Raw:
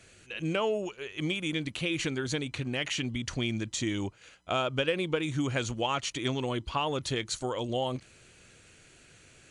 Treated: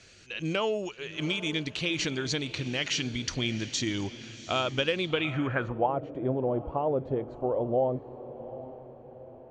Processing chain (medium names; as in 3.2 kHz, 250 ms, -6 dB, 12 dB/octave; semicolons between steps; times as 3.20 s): echo that smears into a reverb 747 ms, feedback 47%, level -14 dB; low-pass sweep 5.3 kHz -> 620 Hz, 4.96–5.95 s